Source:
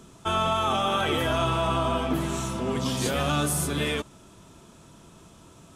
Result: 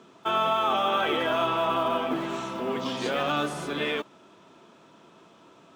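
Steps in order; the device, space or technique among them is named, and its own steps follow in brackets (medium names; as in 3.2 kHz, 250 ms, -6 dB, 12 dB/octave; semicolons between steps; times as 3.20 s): early digital voice recorder (band-pass 290–3500 Hz; block-companded coder 7-bit); trim +1 dB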